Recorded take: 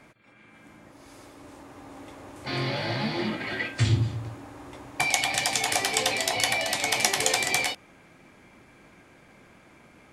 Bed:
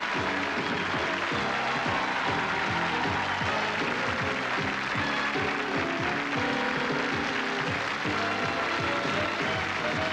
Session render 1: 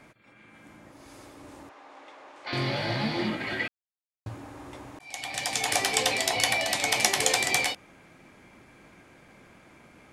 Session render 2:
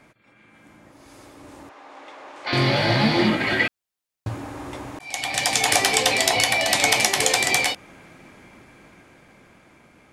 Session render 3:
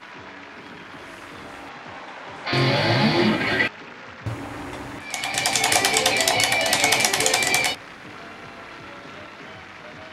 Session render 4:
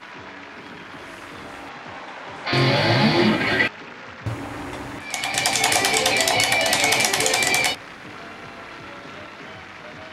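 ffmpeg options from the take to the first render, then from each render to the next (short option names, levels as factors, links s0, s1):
-filter_complex "[0:a]asettb=1/sr,asplit=3[s0][s1][s2];[s0]atrim=end=1.694[s3];[s1]atrim=start=1.69:end=2.53,asetpts=PTS-STARTPTS,afade=t=in:d=0.004:c=qsin,afade=t=out:st=0.836:d=0.004:c=qsin,highpass=600,lowpass=4400[s4];[s2]atrim=start=2.526[s5];[s3][s4]acrossfade=d=0.004:c1=hsin:c2=qsin[s6];[s6][s5]acrossfade=d=0.004:c1=qsin:c2=hsin,asplit=4[s7][s8][s9][s10];[s7]atrim=end=3.68,asetpts=PTS-STARTPTS,afade=t=out:st=3.676:d=0.004:c=hsin[s11];[s8]atrim=start=3.68:end=4.26,asetpts=PTS-STARTPTS,volume=0[s12];[s9]atrim=start=4.26:end=4.99,asetpts=PTS-STARTPTS,afade=t=in:d=0.004:c=hsin,afade=t=out:st=0.726:d=0.004:c=hsin[s13];[s10]atrim=start=4.99,asetpts=PTS-STARTPTS,afade=t=in:d=0.78[s14];[s11][s12][s13][s14]concat=n=4:v=0:a=1"
-af "alimiter=limit=0.316:level=0:latency=1:release=380,dynaudnorm=f=520:g=9:m=4.47"
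-filter_complex "[1:a]volume=0.266[s0];[0:a][s0]amix=inputs=2:normalize=0"
-af "volume=1.19,alimiter=limit=0.708:level=0:latency=1"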